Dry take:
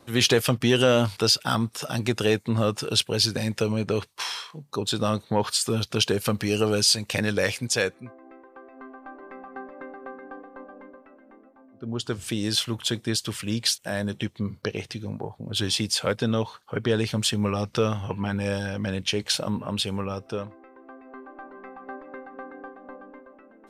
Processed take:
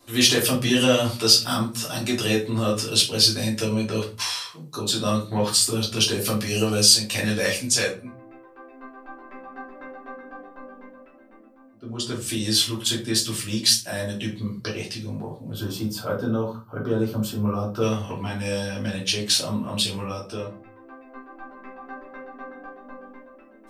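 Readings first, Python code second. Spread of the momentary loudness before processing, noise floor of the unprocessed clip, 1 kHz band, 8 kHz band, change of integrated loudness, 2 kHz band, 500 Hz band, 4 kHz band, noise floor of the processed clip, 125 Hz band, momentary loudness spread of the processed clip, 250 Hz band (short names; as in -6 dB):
22 LU, -55 dBFS, -0.5 dB, +6.0 dB, +3.0 dB, +1.0 dB, -0.5 dB, +4.0 dB, -50 dBFS, 0.0 dB, 23 LU, +1.5 dB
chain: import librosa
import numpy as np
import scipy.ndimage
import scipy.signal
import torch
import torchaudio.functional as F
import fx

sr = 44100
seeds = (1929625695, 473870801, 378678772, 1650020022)

y = fx.spec_box(x, sr, start_s=15.53, length_s=2.28, low_hz=1600.0, high_hz=12000.0, gain_db=-16)
y = fx.high_shelf(y, sr, hz=3300.0, db=11.5)
y = fx.room_shoebox(y, sr, seeds[0], volume_m3=180.0, walls='furnished', distance_m=3.0)
y = F.gain(torch.from_numpy(y), -8.0).numpy()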